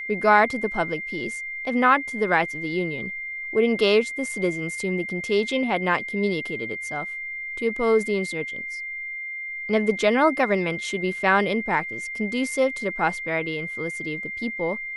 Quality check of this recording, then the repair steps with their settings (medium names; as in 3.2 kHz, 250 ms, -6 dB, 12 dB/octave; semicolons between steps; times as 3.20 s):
whine 2.1 kHz -30 dBFS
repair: band-stop 2.1 kHz, Q 30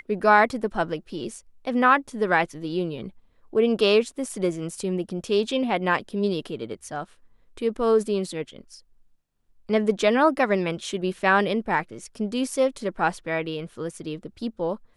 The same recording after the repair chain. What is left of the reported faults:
nothing left